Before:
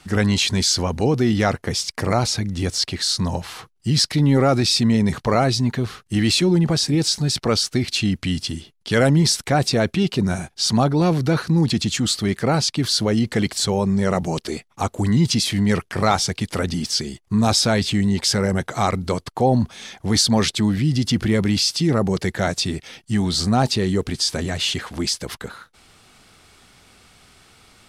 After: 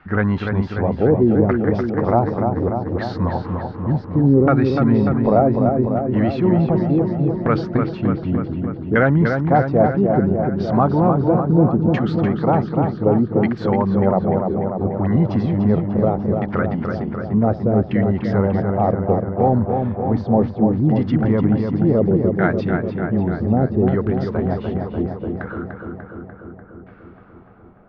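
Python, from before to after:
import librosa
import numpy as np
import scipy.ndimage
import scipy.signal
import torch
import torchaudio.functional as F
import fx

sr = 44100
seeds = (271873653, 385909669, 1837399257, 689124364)

p1 = fx.dynamic_eq(x, sr, hz=6100.0, q=0.85, threshold_db=-36.0, ratio=4.0, max_db=8)
p2 = fx.filter_lfo_lowpass(p1, sr, shape='saw_down', hz=0.67, low_hz=350.0, high_hz=1700.0, q=2.1)
p3 = fx.air_absorb(p2, sr, metres=210.0)
y = p3 + fx.echo_filtered(p3, sr, ms=295, feedback_pct=72, hz=3100.0, wet_db=-5.0, dry=0)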